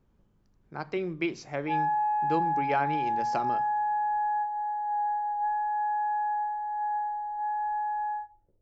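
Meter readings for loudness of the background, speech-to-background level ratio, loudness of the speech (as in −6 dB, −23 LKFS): −29.5 LKFS, −4.5 dB, −34.0 LKFS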